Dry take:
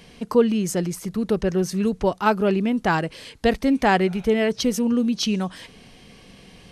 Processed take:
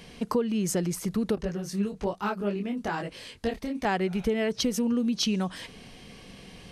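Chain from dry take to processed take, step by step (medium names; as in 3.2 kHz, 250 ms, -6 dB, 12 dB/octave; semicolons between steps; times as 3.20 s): compression 6:1, threshold -23 dBFS, peak gain reduction 11.5 dB; 1.35–3.85 s: detune thickener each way 38 cents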